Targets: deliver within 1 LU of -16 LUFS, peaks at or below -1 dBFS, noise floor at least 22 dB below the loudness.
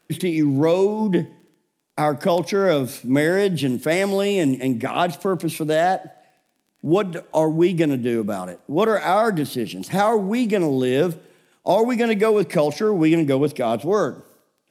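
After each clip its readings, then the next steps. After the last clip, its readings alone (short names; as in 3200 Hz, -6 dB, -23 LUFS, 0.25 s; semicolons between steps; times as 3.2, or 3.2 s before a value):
ticks 19/s; loudness -20.5 LUFS; peak -6.0 dBFS; loudness target -16.0 LUFS
-> de-click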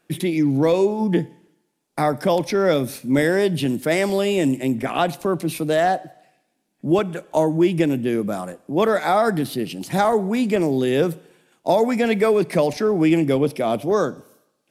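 ticks 0/s; loudness -20.5 LUFS; peak -6.0 dBFS; loudness target -16.0 LUFS
-> gain +4.5 dB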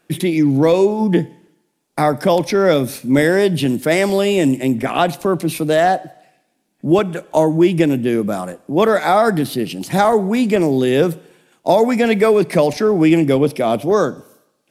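loudness -16.0 LUFS; peak -1.5 dBFS; noise floor -66 dBFS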